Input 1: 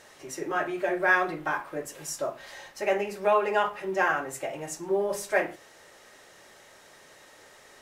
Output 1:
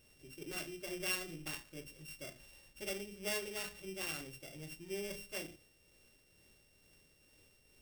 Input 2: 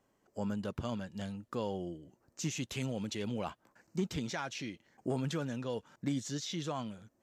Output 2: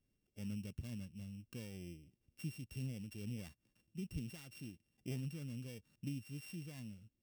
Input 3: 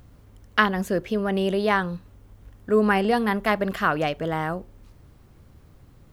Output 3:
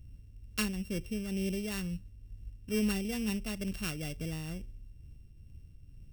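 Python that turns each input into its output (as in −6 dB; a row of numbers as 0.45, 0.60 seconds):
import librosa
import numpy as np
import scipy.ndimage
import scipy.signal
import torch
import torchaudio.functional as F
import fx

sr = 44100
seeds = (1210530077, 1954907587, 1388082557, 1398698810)

y = np.r_[np.sort(x[:len(x) // 16 * 16].reshape(-1, 16), axis=1).ravel(), x[len(x) // 16 * 16:]]
y = fx.tremolo_shape(y, sr, shape='triangle', hz=2.2, depth_pct=40)
y = fx.tone_stack(y, sr, knobs='10-0-1')
y = y * librosa.db_to_amplitude(10.0)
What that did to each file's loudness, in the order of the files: −14.5, −9.0, −12.0 LU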